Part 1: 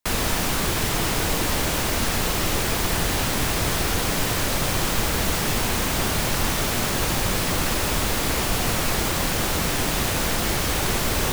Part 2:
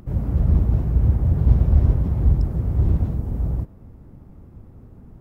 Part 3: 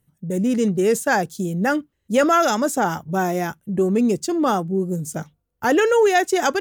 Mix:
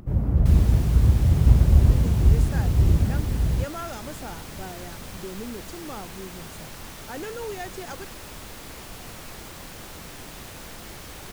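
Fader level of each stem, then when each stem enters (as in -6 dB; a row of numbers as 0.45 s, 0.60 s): -17.0 dB, 0.0 dB, -18.5 dB; 0.40 s, 0.00 s, 1.45 s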